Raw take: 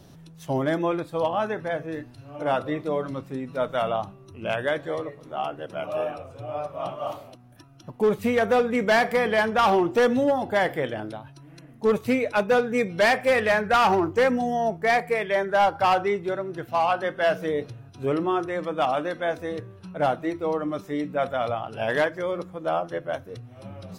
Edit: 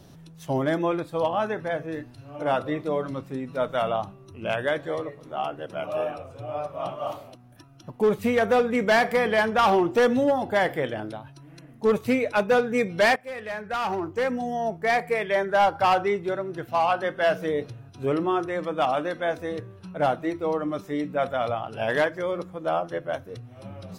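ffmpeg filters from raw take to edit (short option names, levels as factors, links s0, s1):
-filter_complex "[0:a]asplit=2[s0][s1];[s0]atrim=end=13.16,asetpts=PTS-STARTPTS,afade=t=out:st=13.156:d=0.004:c=hsin:silence=0.11885[s2];[s1]atrim=start=13.16,asetpts=PTS-STARTPTS,afade=t=in:d=2.15:silence=0.11885[s3];[s2][s3]concat=n=2:v=0:a=1"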